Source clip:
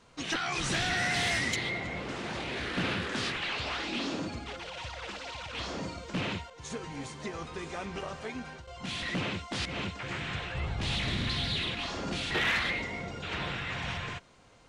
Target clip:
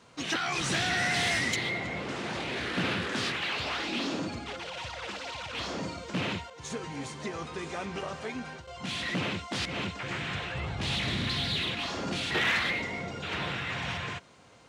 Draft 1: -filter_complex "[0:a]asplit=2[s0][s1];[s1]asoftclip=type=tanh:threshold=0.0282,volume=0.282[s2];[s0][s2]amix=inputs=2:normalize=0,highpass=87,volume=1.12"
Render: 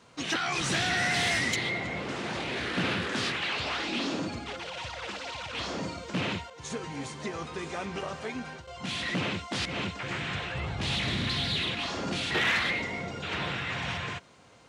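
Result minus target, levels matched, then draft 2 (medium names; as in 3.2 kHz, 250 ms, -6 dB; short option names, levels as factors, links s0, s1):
saturation: distortion -7 dB
-filter_complex "[0:a]asplit=2[s0][s1];[s1]asoftclip=type=tanh:threshold=0.00891,volume=0.282[s2];[s0][s2]amix=inputs=2:normalize=0,highpass=87,volume=1.12"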